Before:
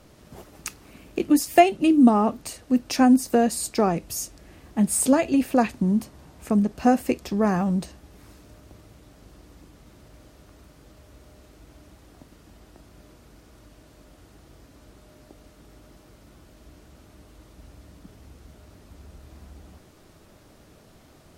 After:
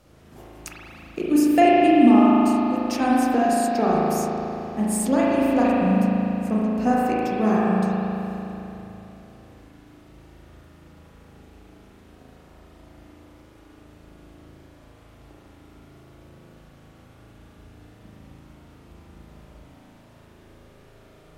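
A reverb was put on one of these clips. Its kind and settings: spring tank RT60 3.3 s, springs 37 ms, chirp 70 ms, DRR -7 dB; trim -5 dB

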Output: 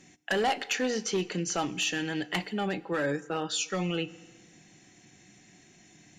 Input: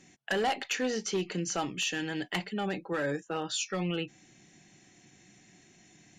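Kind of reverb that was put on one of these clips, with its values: FDN reverb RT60 1.5 s, low-frequency decay 0.85×, high-frequency decay 0.85×, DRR 17.5 dB; trim +2 dB

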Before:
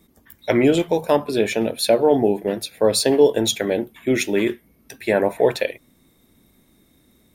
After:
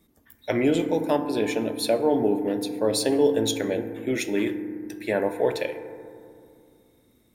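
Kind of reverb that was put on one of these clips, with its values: FDN reverb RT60 2.4 s, low-frequency decay 1.5×, high-frequency decay 0.25×, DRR 8.5 dB; trim -6.5 dB

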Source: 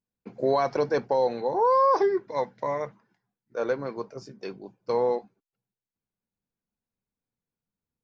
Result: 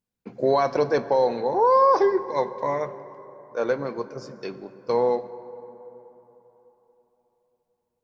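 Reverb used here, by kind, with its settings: plate-style reverb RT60 3.9 s, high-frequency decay 0.4×, DRR 13.5 dB; trim +3 dB

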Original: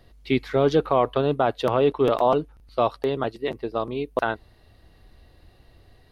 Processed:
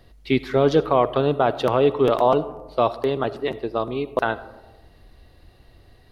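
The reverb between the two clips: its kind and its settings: algorithmic reverb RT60 1.2 s, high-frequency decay 0.3×, pre-delay 25 ms, DRR 15.5 dB; trim +2 dB

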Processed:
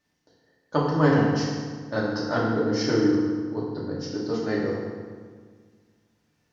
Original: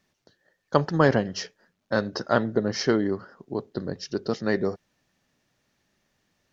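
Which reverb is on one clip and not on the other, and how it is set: FDN reverb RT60 1.7 s, low-frequency decay 1.3×, high-frequency decay 0.7×, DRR -6 dB; trim -7.5 dB

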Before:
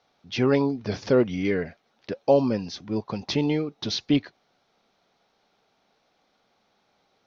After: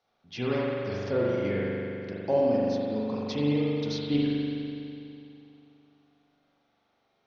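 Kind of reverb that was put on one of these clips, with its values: spring tank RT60 2.8 s, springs 41 ms, chirp 55 ms, DRR -5.5 dB; trim -10 dB

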